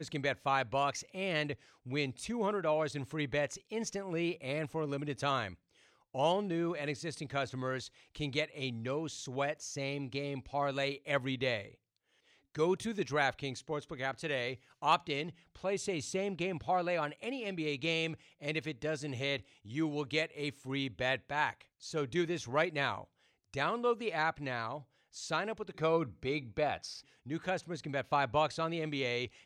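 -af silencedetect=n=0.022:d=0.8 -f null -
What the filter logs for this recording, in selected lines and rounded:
silence_start: 11.61
silence_end: 12.56 | silence_duration: 0.94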